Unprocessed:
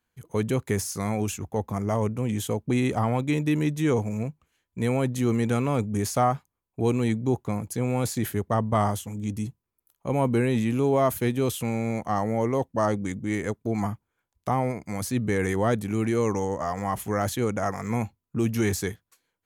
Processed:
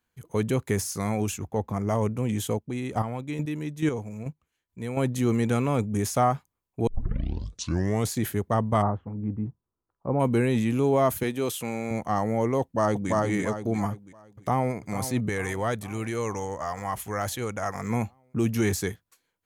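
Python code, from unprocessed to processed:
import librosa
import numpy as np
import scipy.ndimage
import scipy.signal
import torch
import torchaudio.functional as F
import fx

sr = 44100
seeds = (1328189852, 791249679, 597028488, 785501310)

y = fx.high_shelf(x, sr, hz=5300.0, db=-6.5, at=(1.47, 1.87))
y = fx.chopper(y, sr, hz=2.3, depth_pct=60, duty_pct=15, at=(2.52, 4.97))
y = fx.notch(y, sr, hz=4500.0, q=11.0, at=(5.62, 6.22))
y = fx.lowpass(y, sr, hz=1400.0, slope=24, at=(8.81, 10.19), fade=0.02)
y = fx.highpass(y, sr, hz=310.0, slope=6, at=(11.23, 11.91))
y = fx.echo_throw(y, sr, start_s=12.61, length_s=0.49, ms=340, feedback_pct=35, wet_db=-1.0)
y = fx.echo_throw(y, sr, start_s=13.92, length_s=0.83, ms=450, feedback_pct=65, wet_db=-11.5)
y = fx.peak_eq(y, sr, hz=240.0, db=-8.0, octaves=2.5, at=(15.29, 17.75))
y = fx.edit(y, sr, fx.tape_start(start_s=6.87, length_s=1.26), tone=tone)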